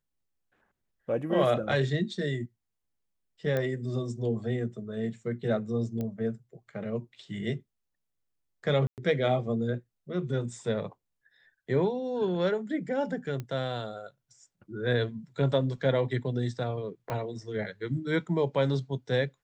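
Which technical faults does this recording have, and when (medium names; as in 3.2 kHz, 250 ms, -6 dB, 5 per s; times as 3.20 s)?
3.57 s: pop -18 dBFS
6.01 s: pop -22 dBFS
8.87–8.98 s: dropout 108 ms
13.40 s: pop -23 dBFS
17.10 s: pop -19 dBFS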